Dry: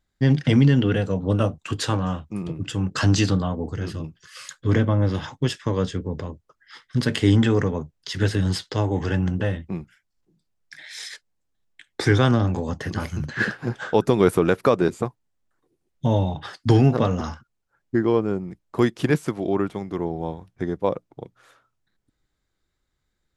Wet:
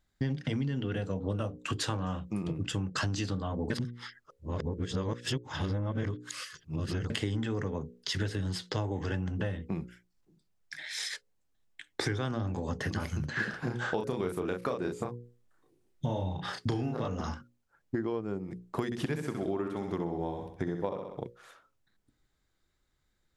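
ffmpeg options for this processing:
-filter_complex "[0:a]asettb=1/sr,asplit=3[s0][s1][s2];[s0]atrim=end=13.504[s3];[s1]atrim=start=13.5:end=17.08,asetpts=PTS-STARTPTS,afade=t=in:d=0.004:c=qsin,afade=t=out:st=3.576:d=0.004:c=qsin,asplit=2[s4][s5];[s5]adelay=33,volume=0.708[s6];[s4][s6]amix=inputs=2:normalize=0,atrim=end_sample=157878[s7];[s2]atrim=start=17.076[s8];[s3][s7]acrossfade=d=0.004:c1=hsin:c2=qsin[s9];[s9][s8]acrossfade=d=0.004:c1=qsin:c2=hsin,asettb=1/sr,asplit=3[s10][s11][s12];[s10]atrim=end=18.854[s13];[s11]atrim=start=18.85:end=21.21,asetpts=PTS-STARTPTS,afade=t=in:d=0.004:c=qsin,afade=t=out:st=2.356:d=0.004:c=qsin,aecho=1:1:64|128|192|256|320:0.447|0.205|0.0945|0.0435|0.02,atrim=end_sample=104076[s14];[s12]atrim=start=21.206[s15];[s13][s14]acrossfade=d=0.004:c1=hsin:c2=qsin[s16];[s16][s15]acrossfade=d=0.004:c1=qsin:c2=hsin,asplit=3[s17][s18][s19];[s17]atrim=end=3.702[s20];[s18]atrim=start=3.698:end=7.102,asetpts=PTS-STARTPTS,areverse[s21];[s19]atrim=start=7.098[s22];[s20][s21]acrossfade=d=0.004:c1=hsin:c2=hsin[s23];[s23][s22]acrossfade=d=0.004:c1=hsin:c2=hsin,bandreject=f=60:t=h:w=6,bandreject=f=120:t=h:w=6,bandreject=f=180:t=h:w=6,bandreject=f=240:t=h:w=6,bandreject=f=300:t=h:w=6,bandreject=f=360:t=h:w=6,bandreject=f=420:t=h:w=6,bandreject=f=480:t=h:w=6,bandreject=f=540:t=h:w=6,acompressor=threshold=0.0355:ratio=10"

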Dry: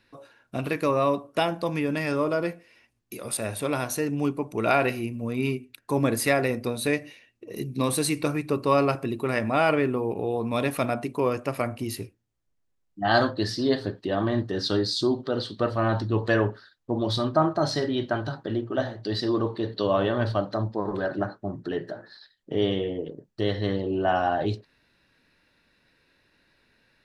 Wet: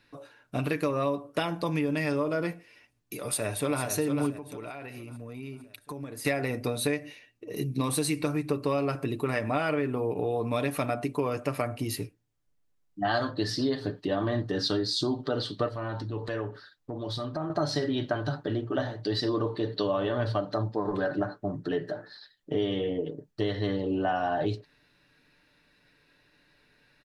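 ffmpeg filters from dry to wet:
-filter_complex "[0:a]asplit=2[s0][s1];[s1]afade=t=in:st=3.21:d=0.01,afade=t=out:st=3.81:d=0.01,aecho=0:1:450|900|1350|1800|2250|2700:0.473151|0.236576|0.118288|0.0591439|0.029572|0.014786[s2];[s0][s2]amix=inputs=2:normalize=0,asettb=1/sr,asplit=3[s3][s4][s5];[s3]atrim=end=4.364[s6];[s4]atrim=start=4.36:end=6.25,asetpts=PTS-STARTPTS,afade=t=in:d=0.004:c=qsin,afade=t=out:st=1.886:d=0.004:c=qsin,acompressor=threshold=0.0141:ratio=8:attack=3.2:release=140:knee=1:detection=peak[s7];[s5]atrim=start=6.246[s8];[s6][s7]acrossfade=d=0.004:c1=hsin:c2=qsin[s9];[s9][s8]acrossfade=d=0.004:c1=qsin:c2=hsin,asettb=1/sr,asplit=3[s10][s11][s12];[s10]atrim=end=15.684[s13];[s11]atrim=start=15.68:end=17.5,asetpts=PTS-STARTPTS,afade=t=in:d=0.004:c=qsin,afade=t=out:st=1.816:d=0.004:c=qsin,acompressor=threshold=0.0178:ratio=2.5:attack=3.2:release=140:knee=1:detection=peak[s14];[s12]atrim=start=17.496[s15];[s13][s14]acrossfade=d=0.004:c1=hsin:c2=qsin[s16];[s16][s15]acrossfade=d=0.004:c1=qsin:c2=hsin,aecho=1:1:6.8:0.44,acompressor=threshold=0.0631:ratio=6"

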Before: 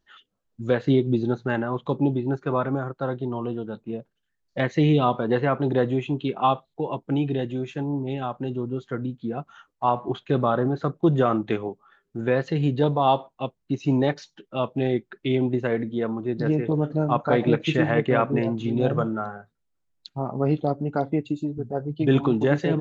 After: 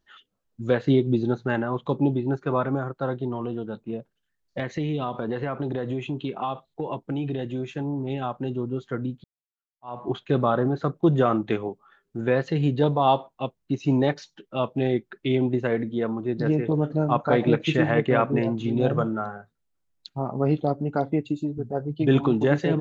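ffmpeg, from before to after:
-filter_complex "[0:a]asettb=1/sr,asplit=3[s0][s1][s2];[s0]atrim=end=3.304[s3];[s1]atrim=start=3.3:end=8.1,asetpts=PTS-STARTPTS,afade=t=in:d=0.004:c=qsin,afade=t=out:st=4.796:d=0.004:c=qsin,acompressor=threshold=0.0631:ratio=6:attack=3.2:release=140:knee=1:detection=peak[s4];[s2]atrim=start=8.096[s5];[s3][s4]acrossfade=d=0.004:c1=hsin:c2=qsin[s6];[s6][s5]acrossfade=d=0.004:c1=qsin:c2=hsin,asplit=2[s7][s8];[s7]atrim=end=9.24,asetpts=PTS-STARTPTS,afade=t=out:st=9.236:d=0.004:c=hsin[s9];[s8]atrim=start=9.24,asetpts=PTS-STARTPTS,afade=t=in:d=0.78:c=exp[s10];[s9][s10]concat=n=2:v=0:a=1"

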